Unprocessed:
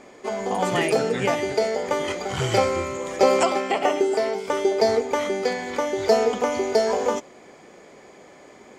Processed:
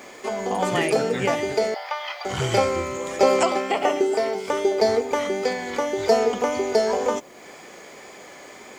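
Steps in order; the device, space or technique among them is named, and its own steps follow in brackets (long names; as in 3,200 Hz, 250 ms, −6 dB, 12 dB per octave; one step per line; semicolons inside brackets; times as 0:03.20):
0:01.74–0:02.25: Chebyshev band-pass filter 680–5,200 Hz, order 4
noise-reduction cassette on a plain deck (one half of a high-frequency compander encoder only; tape wow and flutter 21 cents; white noise bed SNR 40 dB)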